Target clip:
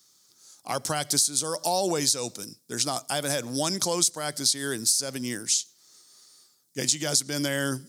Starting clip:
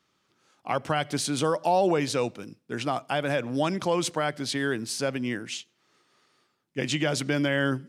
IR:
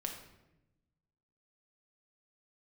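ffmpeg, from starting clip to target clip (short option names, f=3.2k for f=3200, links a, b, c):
-af "aexciter=amount=13:drive=4.1:freq=4.1k,acompressor=threshold=-17dB:ratio=16,volume=-2.5dB"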